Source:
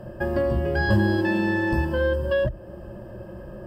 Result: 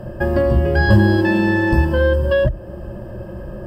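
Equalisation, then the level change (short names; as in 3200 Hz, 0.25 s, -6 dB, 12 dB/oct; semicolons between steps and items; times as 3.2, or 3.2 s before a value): low shelf 110 Hz +5.5 dB; +6.0 dB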